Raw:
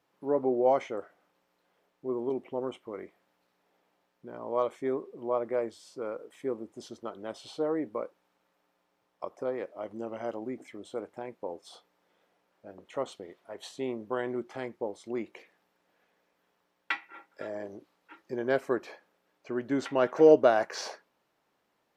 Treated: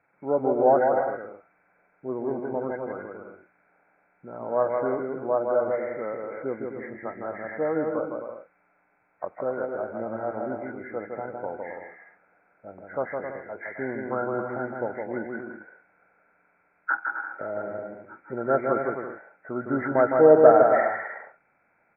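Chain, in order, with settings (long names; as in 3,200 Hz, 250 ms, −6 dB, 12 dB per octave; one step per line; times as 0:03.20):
hearing-aid frequency compression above 1,300 Hz 4 to 1
comb filter 1.4 ms, depth 35%
bouncing-ball delay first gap 160 ms, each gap 0.65×, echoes 5
level +4 dB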